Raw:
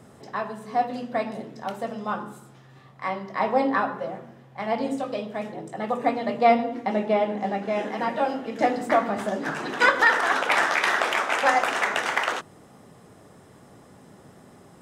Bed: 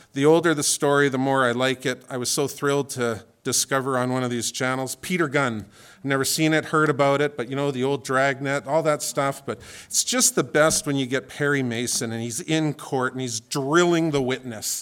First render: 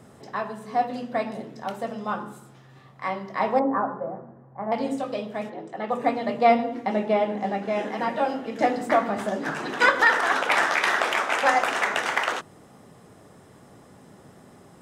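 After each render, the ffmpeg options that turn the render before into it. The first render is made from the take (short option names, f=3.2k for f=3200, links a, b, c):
-filter_complex "[0:a]asettb=1/sr,asplit=3[a][b][c];[a]atrim=end=3.594[d];[b]atrim=start=3.59:end=4.72,asetpts=PTS-STARTPTS,afade=t=in:d=0.004:c=qsin,afade=t=out:st=1.126:d=0.004:c=qsin,lowpass=f=1.3k:w=0.5412,lowpass=f=1.3k:w=1.3066[e];[c]atrim=start=4.716[f];[d][e]acrossfade=d=0.004:c1=hsin:c2=qsin[g];[g][f]acrossfade=d=0.004:c1=qsin:c2=hsin,asplit=3[h][i][j];[h]afade=t=out:st=5.49:d=0.02[k];[i]highpass=220,lowpass=4.3k,afade=t=in:st=5.49:d=0.02,afade=t=out:st=5.9:d=0.02[l];[j]afade=t=in:st=5.9:d=0.02[m];[k][l][m]amix=inputs=3:normalize=0"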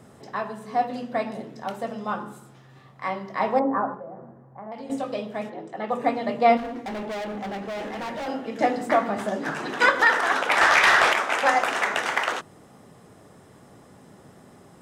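-filter_complex "[0:a]asettb=1/sr,asplit=3[a][b][c];[a]atrim=end=3.944[d];[b]atrim=start=3.94:end=4.9,asetpts=PTS-STARTPTS,afade=t=in:d=0.004:c=qsin,afade=t=out:st=0.956:d=0.004:c=qsin,acompressor=threshold=-37dB:ratio=3:attack=3.2:release=140:knee=1:detection=peak[e];[c]atrim=start=4.896[f];[d][e]acrossfade=d=0.004:c1=hsin:c2=qsin[g];[g][f]acrossfade=d=0.004:c1=qsin:c2=hsin,asettb=1/sr,asplit=3[h][i][j];[h]atrim=end=6.574[k];[i]atrim=start=6.57:end=8.28,asetpts=PTS-STARTPTS,afade=t=in:d=0.004:c=qsin,afade=t=out:st=1.706:d=0.004:c=qsin,asoftclip=type=hard:threshold=-29.5dB[l];[j]atrim=start=8.276[m];[k][l]acrossfade=d=0.004:c1=hsin:c2=qsin[n];[n][m]acrossfade=d=0.004:c1=qsin:c2=hsin,asettb=1/sr,asplit=3[o][p][q];[o]atrim=end=10.614[r];[p]atrim=start=10.61:end=11.13,asetpts=PTS-STARTPTS,afade=t=in:d=0.004:c=qsin,afade=t=out:st=0.516:d=0.004:c=qsin,asplit=2[s][t];[t]highpass=f=720:p=1,volume=15dB,asoftclip=type=tanh:threshold=-7.5dB[u];[s][u]amix=inputs=2:normalize=0,lowpass=f=6.5k:p=1,volume=-6dB[v];[q]atrim=start=11.126[w];[r][v]acrossfade=d=0.004:c1=hsin:c2=qsin[x];[x][w]acrossfade=d=0.004:c1=qsin:c2=hsin"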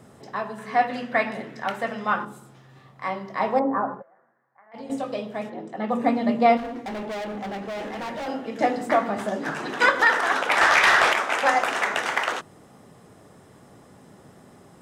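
-filter_complex "[0:a]asettb=1/sr,asplit=3[a][b][c];[a]atrim=end=0.584[d];[b]atrim=start=0.58:end=2.25,asetpts=PTS-STARTPTS,afade=t=in:d=0.004:c=qsin,afade=t=out:st=1.666:d=0.004:c=qsin,equalizer=f=1.9k:t=o:w=1.4:g=12.5[e];[c]atrim=start=2.246[f];[d][e]acrossfade=d=0.004:c1=hsin:c2=qsin[g];[g][f]acrossfade=d=0.004:c1=qsin:c2=hsin,asplit=3[h][i][j];[h]afade=t=out:st=4.01:d=0.02[k];[i]bandpass=f=1.8k:t=q:w=3.2,afade=t=in:st=4.01:d=0.02,afade=t=out:st=4.73:d=0.02[l];[j]afade=t=in:st=4.73:d=0.02[m];[k][l][m]amix=inputs=3:normalize=0,asettb=1/sr,asplit=3[n][o][p];[n]atrim=end=5.514[q];[o]atrim=start=5.51:end=6.46,asetpts=PTS-STARTPTS,afade=t=in:d=0.004:c=qsin,afade=t=out:st=0.946:d=0.004:c=qsin,equalizer=f=230:w=3.4:g=9.5[r];[p]atrim=start=6.456[s];[q][r]acrossfade=d=0.004:c1=hsin:c2=qsin[t];[t][s]acrossfade=d=0.004:c1=qsin:c2=hsin"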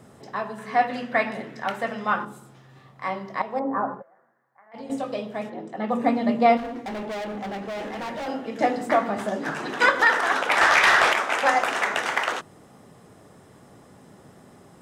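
-filter_complex "[0:a]asplit=2[a][b];[a]atrim=end=3.42,asetpts=PTS-STARTPTS,afade=t=out:st=3.416:d=0.004:c=hsin:silence=0.211349[c];[b]atrim=start=3.42,asetpts=PTS-STARTPTS,afade=t=in:d=0.41:silence=0.211349[d];[c][d]concat=n=2:v=0:a=1"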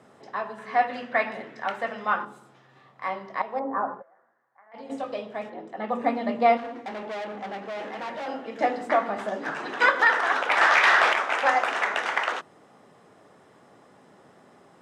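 -af "highpass=f=490:p=1,aemphasis=mode=reproduction:type=50fm"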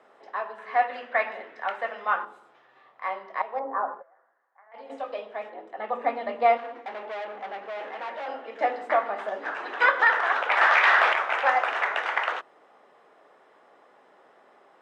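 -filter_complex "[0:a]highpass=120,acrossover=split=370 3700:gain=0.0891 1 0.224[a][b][c];[a][b][c]amix=inputs=3:normalize=0"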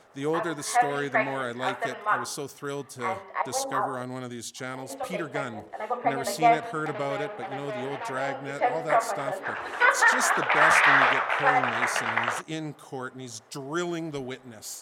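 -filter_complex "[1:a]volume=-11.5dB[a];[0:a][a]amix=inputs=2:normalize=0"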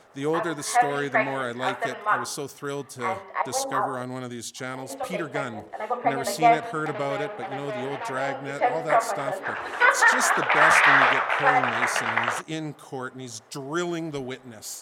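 -af "volume=2dB"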